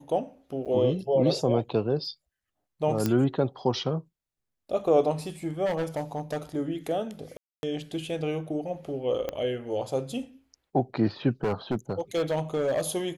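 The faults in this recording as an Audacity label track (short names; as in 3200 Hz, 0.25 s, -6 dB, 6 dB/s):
0.650000	0.660000	gap 7.6 ms
3.060000	3.060000	pop -12 dBFS
5.650000	6.370000	clipped -24.5 dBFS
7.370000	7.630000	gap 0.261 s
9.290000	9.290000	pop -17 dBFS
11.430000	12.810000	clipped -22 dBFS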